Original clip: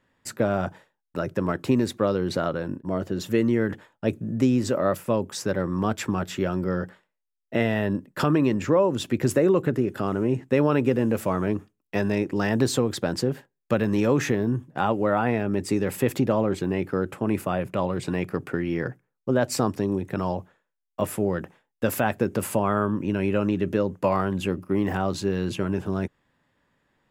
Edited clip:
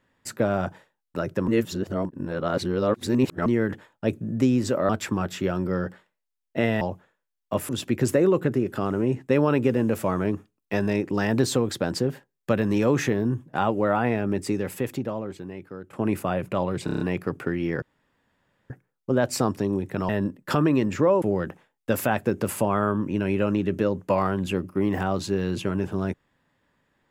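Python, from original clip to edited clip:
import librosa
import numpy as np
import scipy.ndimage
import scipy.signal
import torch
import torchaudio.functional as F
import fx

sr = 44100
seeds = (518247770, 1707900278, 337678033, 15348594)

y = fx.edit(x, sr, fx.reverse_span(start_s=1.48, length_s=1.98),
    fx.cut(start_s=4.89, length_s=0.97),
    fx.swap(start_s=7.78, length_s=1.13, other_s=20.28, other_length_s=0.88),
    fx.fade_out_to(start_s=15.53, length_s=1.62, curve='qua', floor_db=-13.5),
    fx.stutter(start_s=18.07, slice_s=0.03, count=6),
    fx.insert_room_tone(at_s=18.89, length_s=0.88), tone=tone)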